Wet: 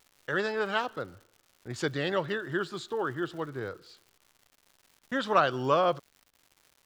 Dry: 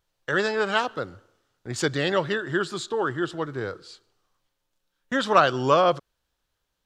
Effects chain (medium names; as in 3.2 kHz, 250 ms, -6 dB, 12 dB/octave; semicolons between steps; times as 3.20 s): peaking EQ 8.4 kHz -6.5 dB 1.3 oct; crackle 230 per s -41 dBFS; trim -5.5 dB